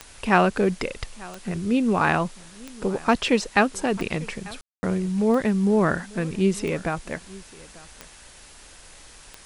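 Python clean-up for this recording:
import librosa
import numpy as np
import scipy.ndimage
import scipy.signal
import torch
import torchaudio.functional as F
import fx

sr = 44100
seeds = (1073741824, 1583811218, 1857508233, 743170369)

y = fx.fix_declick_ar(x, sr, threshold=10.0)
y = fx.fix_ambience(y, sr, seeds[0], print_start_s=8.08, print_end_s=8.58, start_s=4.61, end_s=4.83)
y = fx.noise_reduce(y, sr, print_start_s=8.08, print_end_s=8.58, reduce_db=21.0)
y = fx.fix_echo_inverse(y, sr, delay_ms=893, level_db=-21.5)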